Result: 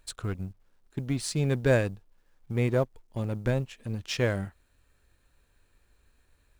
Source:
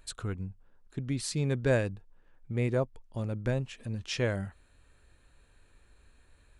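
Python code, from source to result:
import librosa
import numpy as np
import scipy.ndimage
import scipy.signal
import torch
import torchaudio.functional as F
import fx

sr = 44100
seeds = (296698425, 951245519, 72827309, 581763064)

y = fx.law_mismatch(x, sr, coded='A')
y = y * 10.0 ** (4.0 / 20.0)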